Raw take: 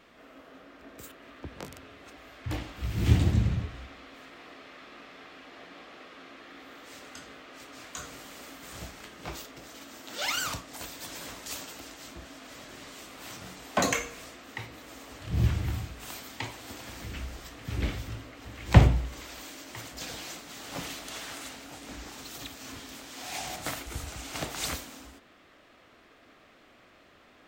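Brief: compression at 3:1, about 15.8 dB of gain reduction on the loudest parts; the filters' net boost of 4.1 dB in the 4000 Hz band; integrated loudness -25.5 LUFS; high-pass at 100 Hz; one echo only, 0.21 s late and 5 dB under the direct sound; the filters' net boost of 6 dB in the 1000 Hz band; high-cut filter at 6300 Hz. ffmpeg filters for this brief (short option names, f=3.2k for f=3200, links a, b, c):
-af "highpass=100,lowpass=6.3k,equalizer=f=1k:t=o:g=7.5,equalizer=f=4k:t=o:g=5.5,acompressor=threshold=-34dB:ratio=3,aecho=1:1:210:0.562,volume=13dB"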